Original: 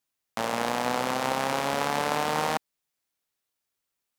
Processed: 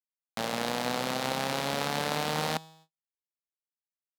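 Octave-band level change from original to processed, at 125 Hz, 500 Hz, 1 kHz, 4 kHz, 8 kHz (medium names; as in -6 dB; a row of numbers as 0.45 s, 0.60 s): +1.5 dB, -3.5 dB, -5.5 dB, +1.0 dB, -1.5 dB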